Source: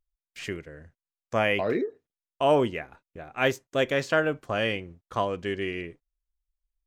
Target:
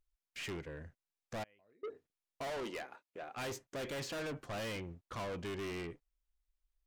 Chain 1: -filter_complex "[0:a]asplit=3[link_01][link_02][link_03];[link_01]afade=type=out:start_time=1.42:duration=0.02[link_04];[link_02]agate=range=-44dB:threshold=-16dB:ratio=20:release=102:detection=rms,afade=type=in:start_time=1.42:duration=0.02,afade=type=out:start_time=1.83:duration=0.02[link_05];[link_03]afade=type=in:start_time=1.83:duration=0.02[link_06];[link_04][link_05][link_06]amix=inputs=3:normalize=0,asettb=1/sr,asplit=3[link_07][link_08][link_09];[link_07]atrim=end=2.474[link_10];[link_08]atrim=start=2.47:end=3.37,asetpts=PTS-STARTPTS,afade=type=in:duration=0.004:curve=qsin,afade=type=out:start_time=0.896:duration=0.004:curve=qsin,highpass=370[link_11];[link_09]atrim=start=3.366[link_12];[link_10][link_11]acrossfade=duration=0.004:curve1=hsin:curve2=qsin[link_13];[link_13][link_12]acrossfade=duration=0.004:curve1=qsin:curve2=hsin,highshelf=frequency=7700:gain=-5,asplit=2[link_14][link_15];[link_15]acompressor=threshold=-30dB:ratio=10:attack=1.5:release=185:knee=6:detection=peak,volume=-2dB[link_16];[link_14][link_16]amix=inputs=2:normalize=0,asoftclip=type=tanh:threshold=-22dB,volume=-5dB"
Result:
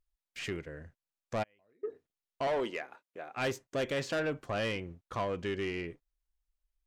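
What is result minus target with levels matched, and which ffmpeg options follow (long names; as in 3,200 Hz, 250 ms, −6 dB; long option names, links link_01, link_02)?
downward compressor: peak gain reduction +8 dB; soft clipping: distortion −7 dB
-filter_complex "[0:a]asplit=3[link_01][link_02][link_03];[link_01]afade=type=out:start_time=1.42:duration=0.02[link_04];[link_02]agate=range=-44dB:threshold=-16dB:ratio=20:release=102:detection=rms,afade=type=in:start_time=1.42:duration=0.02,afade=type=out:start_time=1.83:duration=0.02[link_05];[link_03]afade=type=in:start_time=1.83:duration=0.02[link_06];[link_04][link_05][link_06]amix=inputs=3:normalize=0,asettb=1/sr,asplit=3[link_07][link_08][link_09];[link_07]atrim=end=2.474[link_10];[link_08]atrim=start=2.47:end=3.37,asetpts=PTS-STARTPTS,afade=type=in:duration=0.004:curve=qsin,afade=type=out:start_time=0.896:duration=0.004:curve=qsin,highpass=370[link_11];[link_09]atrim=start=3.366[link_12];[link_10][link_11]acrossfade=duration=0.004:curve1=hsin:curve2=qsin[link_13];[link_13][link_12]acrossfade=duration=0.004:curve1=qsin:curve2=hsin,highshelf=frequency=7700:gain=-5,asplit=2[link_14][link_15];[link_15]acompressor=threshold=-21dB:ratio=10:attack=1.5:release=185:knee=6:detection=peak,volume=-2dB[link_16];[link_14][link_16]amix=inputs=2:normalize=0,asoftclip=type=tanh:threshold=-33.5dB,volume=-5dB"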